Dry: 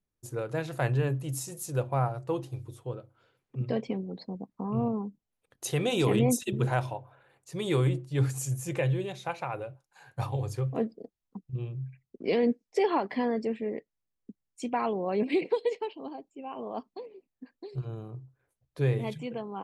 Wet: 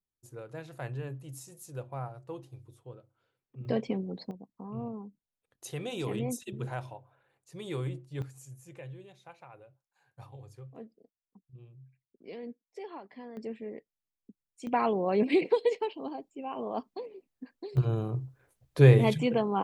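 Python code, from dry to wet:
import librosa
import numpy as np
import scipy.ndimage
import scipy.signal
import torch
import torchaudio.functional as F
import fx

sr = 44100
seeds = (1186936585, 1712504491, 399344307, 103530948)

y = fx.gain(x, sr, db=fx.steps((0.0, -10.5), (3.65, 0.5), (4.31, -9.0), (8.22, -17.0), (13.37, -7.5), (14.67, 2.0), (17.77, 9.0)))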